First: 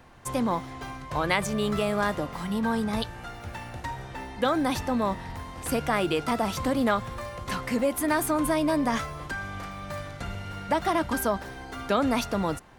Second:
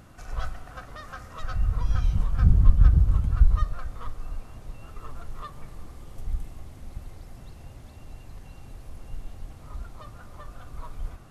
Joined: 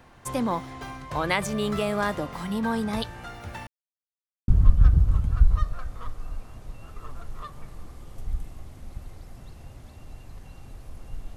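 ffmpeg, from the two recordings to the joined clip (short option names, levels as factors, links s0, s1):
-filter_complex "[0:a]apad=whole_dur=11.36,atrim=end=11.36,asplit=2[s0][s1];[s0]atrim=end=3.67,asetpts=PTS-STARTPTS,afade=t=out:st=3.666:d=0.004:c=hsin[s2];[s1]atrim=start=3.67:end=4.48,asetpts=PTS-STARTPTS,volume=0[s3];[1:a]atrim=start=2.48:end=9.36,asetpts=PTS-STARTPTS,afade=t=in:d=0.004:c=hsin[s4];[s2][s3][s4]concat=n=3:v=0:a=1"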